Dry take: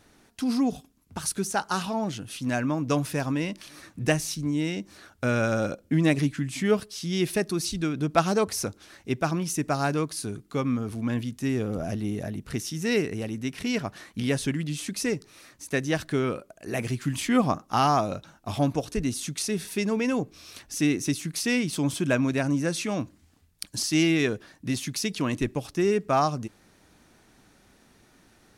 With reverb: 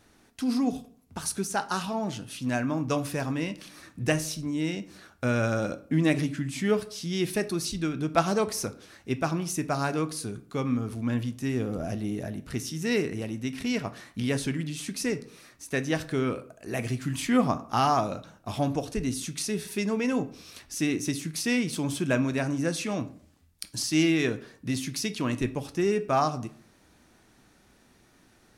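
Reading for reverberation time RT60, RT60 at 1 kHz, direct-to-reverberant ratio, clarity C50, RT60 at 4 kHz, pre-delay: 0.55 s, 0.50 s, 10.0 dB, 16.5 dB, 0.35 s, 6 ms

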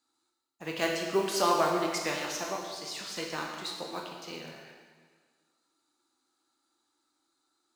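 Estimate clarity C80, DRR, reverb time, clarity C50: 4.0 dB, 0.0 dB, 1.6 s, 2.5 dB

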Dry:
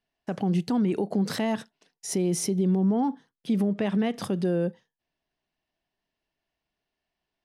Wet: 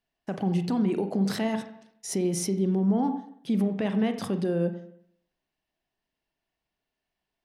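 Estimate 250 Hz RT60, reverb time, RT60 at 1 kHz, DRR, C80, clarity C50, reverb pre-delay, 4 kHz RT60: 0.70 s, 0.65 s, 0.65 s, 8.0 dB, 12.0 dB, 11.0 dB, 36 ms, 0.60 s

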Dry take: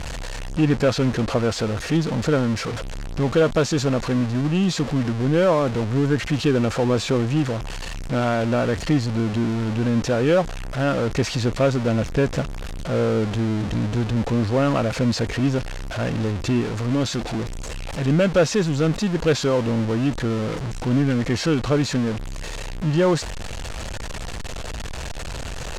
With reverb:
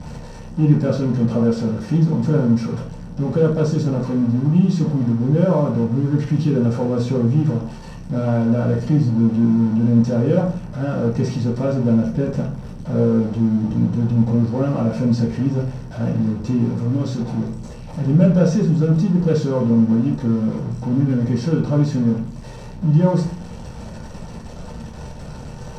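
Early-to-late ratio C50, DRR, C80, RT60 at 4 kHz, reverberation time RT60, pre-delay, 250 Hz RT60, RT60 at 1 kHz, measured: 6.0 dB, -5.5 dB, 12.0 dB, 0.40 s, 0.45 s, 3 ms, 0.75 s, 0.40 s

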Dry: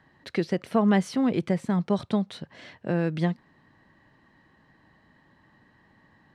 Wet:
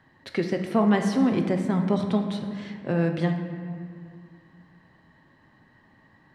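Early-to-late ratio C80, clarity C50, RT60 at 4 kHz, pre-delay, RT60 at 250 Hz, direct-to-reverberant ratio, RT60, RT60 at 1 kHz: 7.5 dB, 6.5 dB, 1.3 s, 7 ms, 2.6 s, 4.0 dB, 2.1 s, 2.0 s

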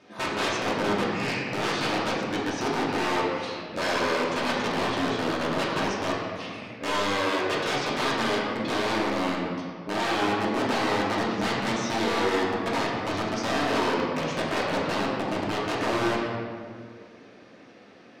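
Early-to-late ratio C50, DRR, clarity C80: -0.5 dB, -6.0 dB, 1.5 dB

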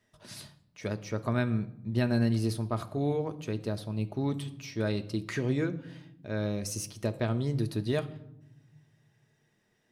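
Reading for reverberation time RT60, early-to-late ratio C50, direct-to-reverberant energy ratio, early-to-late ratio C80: 0.85 s, 16.0 dB, 7.0 dB, 19.5 dB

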